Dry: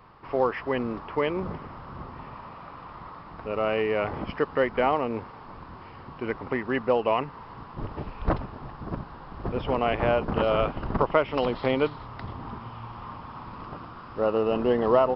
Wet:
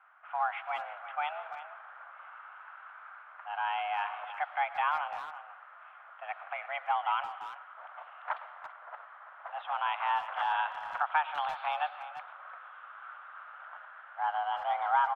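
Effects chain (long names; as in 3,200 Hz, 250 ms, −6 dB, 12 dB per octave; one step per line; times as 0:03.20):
single-sideband voice off tune +300 Hz 430–3,200 Hz
on a send at −14.5 dB: convolution reverb RT60 0.95 s, pre-delay 65 ms
on the sum: low-pass that shuts in the quiet parts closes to 1,900 Hz, open at −22 dBFS
far-end echo of a speakerphone 340 ms, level −12 dB
level −6 dB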